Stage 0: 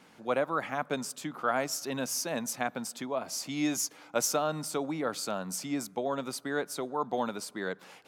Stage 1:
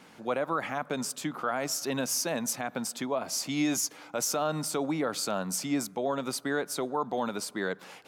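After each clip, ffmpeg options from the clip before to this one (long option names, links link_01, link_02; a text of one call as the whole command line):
ffmpeg -i in.wav -af "alimiter=limit=-23.5dB:level=0:latency=1:release=70,volume=4dB" out.wav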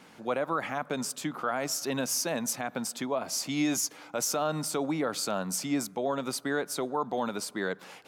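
ffmpeg -i in.wav -af anull out.wav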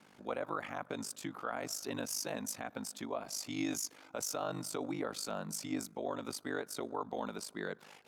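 ffmpeg -i in.wav -af "aeval=exprs='val(0)*sin(2*PI*25*n/s)':channel_layout=same,volume=-5.5dB" out.wav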